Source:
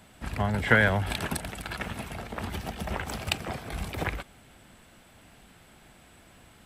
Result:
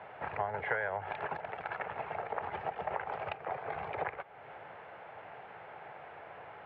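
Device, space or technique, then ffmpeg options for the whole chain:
bass amplifier: -af "lowshelf=frequency=390:width_type=q:width=1.5:gain=-11,acompressor=threshold=-46dB:ratio=3,highpass=frequency=90:width=0.5412,highpass=frequency=90:width=1.3066,equalizer=frequency=150:width_type=q:width=4:gain=4,equalizer=frequency=220:width_type=q:width=4:gain=-7,equalizer=frequency=430:width_type=q:width=4:gain=6,equalizer=frequency=840:width_type=q:width=4:gain=6,lowpass=frequency=2200:width=0.5412,lowpass=frequency=2200:width=1.3066,volume=7dB"

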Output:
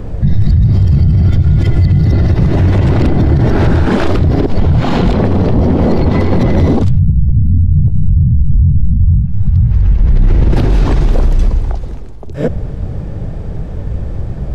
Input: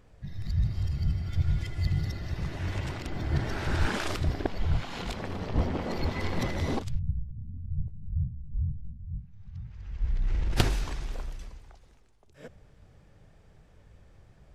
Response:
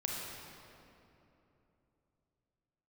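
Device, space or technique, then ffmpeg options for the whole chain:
mastering chain: -filter_complex "[0:a]equalizer=frequency=4000:width_type=o:width=0.77:gain=2.5,acrossover=split=110|4700[link_01][link_02][link_03];[link_01]acompressor=threshold=-37dB:ratio=4[link_04];[link_02]acompressor=threshold=-32dB:ratio=4[link_05];[link_03]acompressor=threshold=-53dB:ratio=4[link_06];[link_04][link_05][link_06]amix=inputs=3:normalize=0,acompressor=threshold=-36dB:ratio=2,asoftclip=type=tanh:threshold=-23.5dB,tiltshelf=frequency=940:gain=9.5,alimiter=level_in=29dB:limit=-1dB:release=50:level=0:latency=1,volume=-2dB"

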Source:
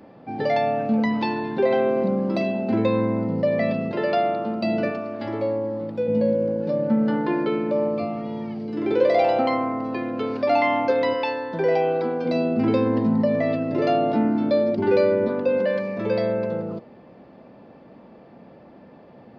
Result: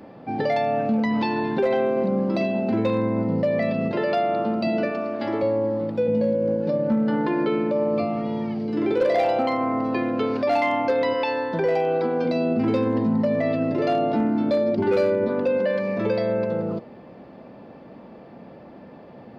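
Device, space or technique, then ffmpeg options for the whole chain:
clipper into limiter: -filter_complex "[0:a]asettb=1/sr,asplit=3[link_01][link_02][link_03];[link_01]atrim=end=4.674[link_04];[link_02]atrim=start=4.67:end=5.43,asetpts=PTS-STARTPTS,afade=type=in:duration=0.004:curve=qsin,afade=type=out:start_time=0.756:duration=0.004:curve=qsin,highpass=170[link_05];[link_03]atrim=start=5.426[link_06];[link_04][link_05]acrossfade=duration=0.004:curve1=hsin:curve2=qsin[link_07];[link_07][link_06]acrossfade=duration=0.004:curve1=qsin:curve2=hsin,asoftclip=type=hard:threshold=-13dB,alimiter=limit=-18dB:level=0:latency=1:release=148,volume=3.5dB"

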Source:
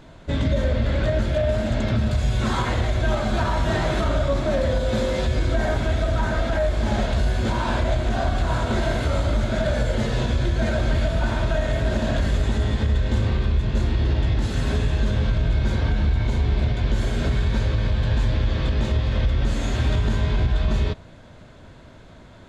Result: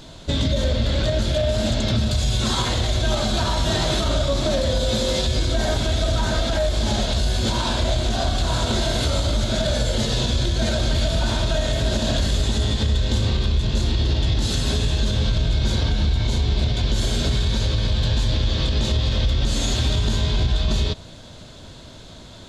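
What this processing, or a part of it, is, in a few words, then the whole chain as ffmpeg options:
over-bright horn tweeter: -af "highshelf=frequency=2800:width_type=q:width=1.5:gain=9.5,alimiter=limit=-15.5dB:level=0:latency=1:release=129,volume=3.5dB"

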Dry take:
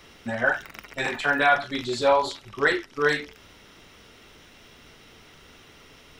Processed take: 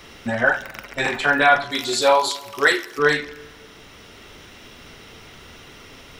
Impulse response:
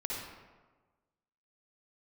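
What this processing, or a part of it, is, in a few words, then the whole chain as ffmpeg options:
ducked reverb: -filter_complex "[0:a]asettb=1/sr,asplit=3[link_01][link_02][link_03];[link_01]atrim=end=1.714[link_04];[link_02]atrim=start=1.71:end=2.99,asetpts=PTS-STARTPTS,afade=type=in:duration=0.004:curve=qsin,afade=type=out:start_time=1.276:duration=0.004:curve=qsin,aemphasis=mode=production:type=bsi[link_05];[link_03]atrim=start=2.986[link_06];[link_04][link_05]acrossfade=duration=0.004:curve1=hsin:curve2=qsin[link_07];[link_07][link_06]acrossfade=duration=0.004:curve1=qsin:curve2=hsin,asplit=3[link_08][link_09][link_10];[1:a]atrim=start_sample=2205[link_11];[link_09][link_11]afir=irnorm=-1:irlink=0[link_12];[link_10]apad=whole_len=273043[link_13];[link_12][link_13]sidechaincompress=threshold=-30dB:ratio=8:attack=11:release=1130,volume=-6dB[link_14];[link_08][link_14]amix=inputs=2:normalize=0,volume=4dB"

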